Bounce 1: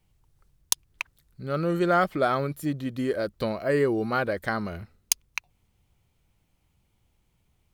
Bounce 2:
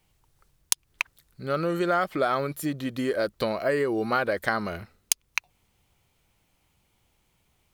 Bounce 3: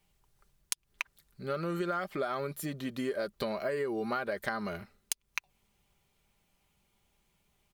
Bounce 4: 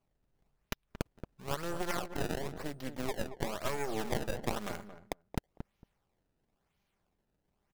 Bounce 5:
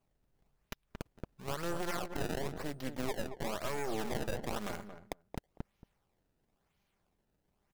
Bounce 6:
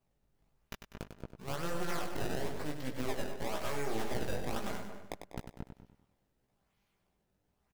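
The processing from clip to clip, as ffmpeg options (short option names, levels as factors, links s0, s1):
-af "acompressor=threshold=0.0562:ratio=6,lowshelf=f=270:g=-9.5,volume=2"
-af "aecho=1:1:5:0.42,acompressor=threshold=0.0562:ratio=4,volume=0.562"
-filter_complex "[0:a]acrusher=samples=23:mix=1:aa=0.000001:lfo=1:lforange=36.8:lforate=0.99,aeval=exprs='0.211*(cos(1*acos(clip(val(0)/0.211,-1,1)))-cos(1*PI/2))+0.0944*(cos(6*acos(clip(val(0)/0.211,-1,1)))-cos(6*PI/2))':c=same,asplit=2[s0][s1];[s1]adelay=227,lowpass=f=1000:p=1,volume=0.355,asplit=2[s2][s3];[s3]adelay=227,lowpass=f=1000:p=1,volume=0.16[s4];[s0][s2][s4]amix=inputs=3:normalize=0,volume=0.473"
-af "alimiter=level_in=1.19:limit=0.0631:level=0:latency=1:release=30,volume=0.841,volume=1.12"
-af "flanger=delay=15.5:depth=5.1:speed=1.7,aecho=1:1:98|196|294|392|490:0.398|0.179|0.0806|0.0363|0.0163,volume=1.33"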